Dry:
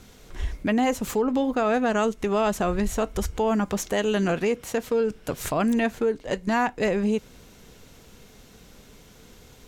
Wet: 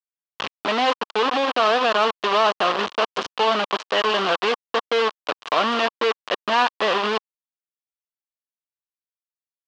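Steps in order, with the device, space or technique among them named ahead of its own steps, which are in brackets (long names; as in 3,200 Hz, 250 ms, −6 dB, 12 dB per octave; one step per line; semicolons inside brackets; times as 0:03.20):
hand-held game console (bit reduction 4 bits; loudspeaker in its box 460–4,500 Hz, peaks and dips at 1,100 Hz +8 dB, 2,100 Hz −4 dB, 3,000 Hz +5 dB)
level +3.5 dB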